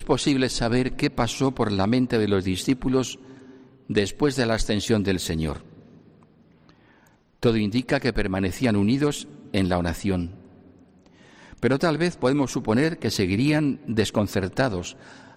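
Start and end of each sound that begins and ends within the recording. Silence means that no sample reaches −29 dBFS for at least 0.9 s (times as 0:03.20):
0:07.43–0:10.27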